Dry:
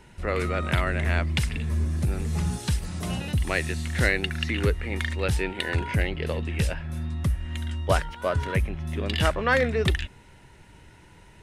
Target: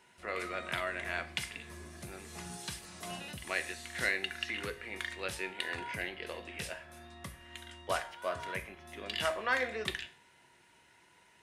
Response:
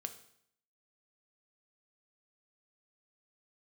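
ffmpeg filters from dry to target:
-filter_complex "[0:a]highpass=f=810:p=1[a];[1:a]atrim=start_sample=2205,asetrate=66150,aresample=44100[b];[a][b]afir=irnorm=-1:irlink=0"

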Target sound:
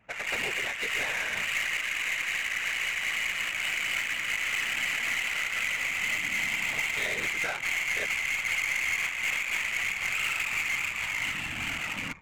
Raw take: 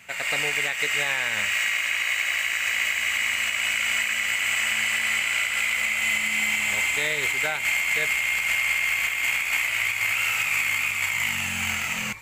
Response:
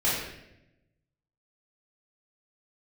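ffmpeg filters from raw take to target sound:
-af "afftfilt=real='hypot(re,im)*cos(2*PI*random(0))':imag='hypot(re,im)*sin(2*PI*random(1))':win_size=512:overlap=0.75,aeval=exprs='0.141*(cos(1*acos(clip(val(0)/0.141,-1,1)))-cos(1*PI/2))+0.00501*(cos(4*acos(clip(val(0)/0.141,-1,1)))-cos(4*PI/2))+0.00631*(cos(5*acos(clip(val(0)/0.141,-1,1)))-cos(5*PI/2))':c=same,adynamicsmooth=sensitivity=6.5:basefreq=930"

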